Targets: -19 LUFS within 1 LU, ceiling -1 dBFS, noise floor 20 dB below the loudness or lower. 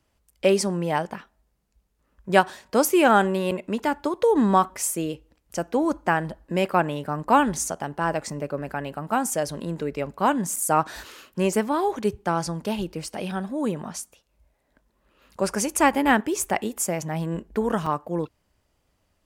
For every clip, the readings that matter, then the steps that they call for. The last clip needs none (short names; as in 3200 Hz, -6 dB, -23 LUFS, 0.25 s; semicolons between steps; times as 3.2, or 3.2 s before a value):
dropouts 3; longest dropout 4.5 ms; loudness -24.5 LUFS; peak -3.0 dBFS; loudness target -19.0 LUFS
-> interpolate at 3.51/10.56/17.86, 4.5 ms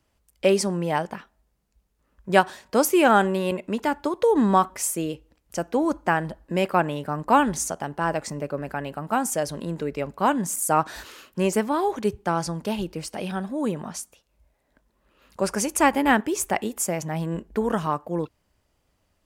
dropouts 0; loudness -24.5 LUFS; peak -3.0 dBFS; loudness target -19.0 LUFS
-> gain +5.5 dB; limiter -1 dBFS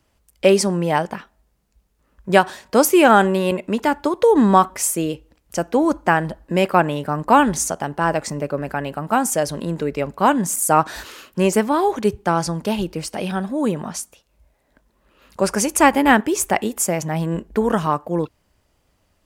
loudness -19.0 LUFS; peak -1.0 dBFS; noise floor -66 dBFS